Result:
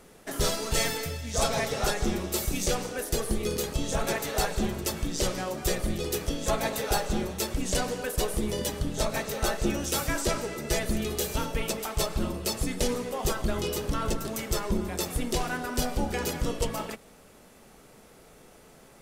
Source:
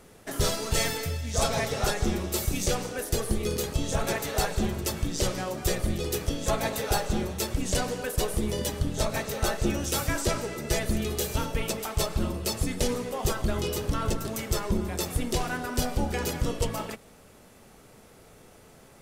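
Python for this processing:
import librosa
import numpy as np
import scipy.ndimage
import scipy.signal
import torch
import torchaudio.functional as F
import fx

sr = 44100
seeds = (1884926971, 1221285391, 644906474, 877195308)

y = fx.peak_eq(x, sr, hz=97.0, db=-8.0, octaves=0.64)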